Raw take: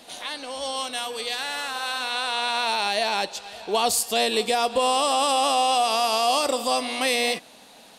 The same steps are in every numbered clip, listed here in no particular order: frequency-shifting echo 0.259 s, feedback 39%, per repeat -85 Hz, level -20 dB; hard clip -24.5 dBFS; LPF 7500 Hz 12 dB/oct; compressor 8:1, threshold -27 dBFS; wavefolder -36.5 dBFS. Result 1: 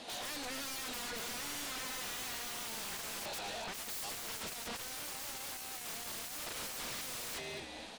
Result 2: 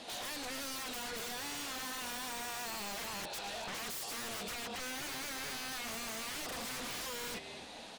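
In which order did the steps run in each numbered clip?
frequency-shifting echo > hard clip > LPF > wavefolder > compressor; LPF > compressor > frequency-shifting echo > wavefolder > hard clip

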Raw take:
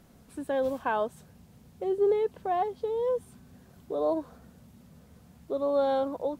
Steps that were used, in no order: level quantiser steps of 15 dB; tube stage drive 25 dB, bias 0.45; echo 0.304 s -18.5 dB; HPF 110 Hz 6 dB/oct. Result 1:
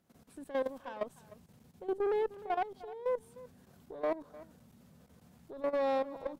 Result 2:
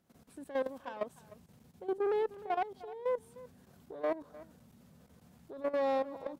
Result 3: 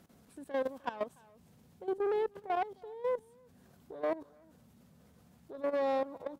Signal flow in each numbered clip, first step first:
HPF > tube stage > level quantiser > echo; tube stage > HPF > level quantiser > echo; tube stage > echo > level quantiser > HPF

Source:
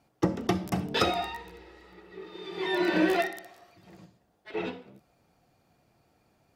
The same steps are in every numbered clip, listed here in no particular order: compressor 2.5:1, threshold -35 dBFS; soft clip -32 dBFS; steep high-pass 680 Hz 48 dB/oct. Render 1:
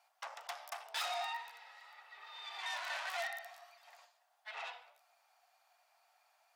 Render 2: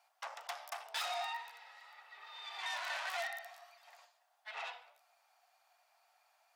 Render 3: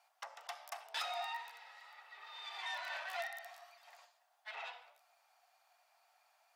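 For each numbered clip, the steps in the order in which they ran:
soft clip > compressor > steep high-pass; soft clip > steep high-pass > compressor; compressor > soft clip > steep high-pass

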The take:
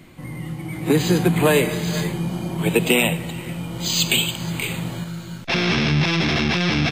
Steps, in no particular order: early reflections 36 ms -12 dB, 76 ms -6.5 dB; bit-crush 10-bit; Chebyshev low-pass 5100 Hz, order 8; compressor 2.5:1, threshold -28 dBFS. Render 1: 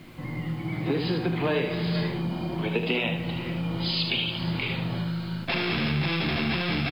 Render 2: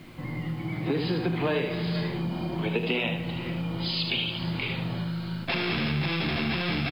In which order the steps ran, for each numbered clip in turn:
Chebyshev low-pass > compressor > bit-crush > early reflections; early reflections > compressor > Chebyshev low-pass > bit-crush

